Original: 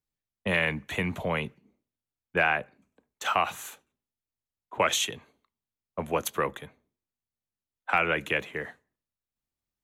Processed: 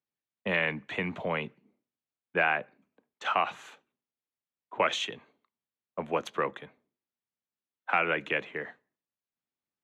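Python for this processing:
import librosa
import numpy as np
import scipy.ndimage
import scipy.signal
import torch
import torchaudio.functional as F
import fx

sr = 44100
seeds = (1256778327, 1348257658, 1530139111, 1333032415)

y = fx.bandpass_edges(x, sr, low_hz=170.0, high_hz=3600.0)
y = F.gain(torch.from_numpy(y), -1.5).numpy()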